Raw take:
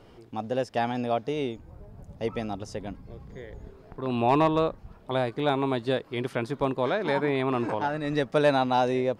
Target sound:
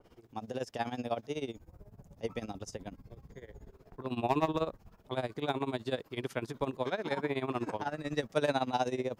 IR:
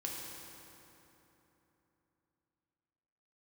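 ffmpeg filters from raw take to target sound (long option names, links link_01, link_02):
-filter_complex "[0:a]tremolo=f=16:d=0.85,acrossover=split=450[link_01][link_02];[link_02]aexciter=amount=2.4:drive=1.8:freq=5700[link_03];[link_01][link_03]amix=inputs=2:normalize=0,adynamicequalizer=threshold=0.00562:dfrequency=2400:dqfactor=0.7:tfrequency=2400:tqfactor=0.7:attack=5:release=100:ratio=0.375:range=1.5:mode=boostabove:tftype=highshelf,volume=-4.5dB"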